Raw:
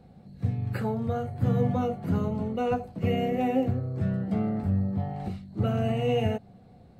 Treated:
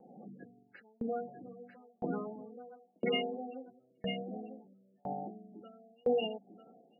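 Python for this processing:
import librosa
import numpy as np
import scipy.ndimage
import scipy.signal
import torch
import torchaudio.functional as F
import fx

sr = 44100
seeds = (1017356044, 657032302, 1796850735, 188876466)

p1 = fx.recorder_agc(x, sr, target_db=-22.5, rise_db_per_s=71.0, max_gain_db=30)
p2 = scipy.signal.sosfilt(scipy.signal.butter(4, 240.0, 'highpass', fs=sr, output='sos'), p1)
p3 = fx.spec_gate(p2, sr, threshold_db=-15, keep='strong')
p4 = fx.band_shelf(p3, sr, hz=2600.0, db=15.5, octaves=1.7)
p5 = p4 + fx.echo_single(p4, sr, ms=945, db=-8.5, dry=0)
y = fx.tremolo_decay(p5, sr, direction='decaying', hz=0.99, depth_db=37)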